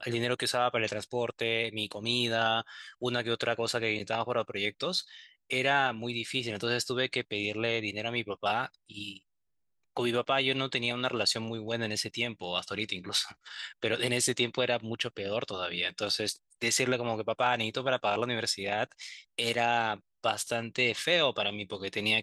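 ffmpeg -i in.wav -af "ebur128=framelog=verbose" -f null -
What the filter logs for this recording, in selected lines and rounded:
Integrated loudness:
  I:         -30.3 LUFS
  Threshold: -40.5 LUFS
Loudness range:
  LRA:         2.1 LU
  Threshold: -50.8 LUFS
  LRA low:   -32.0 LUFS
  LRA high:  -29.8 LUFS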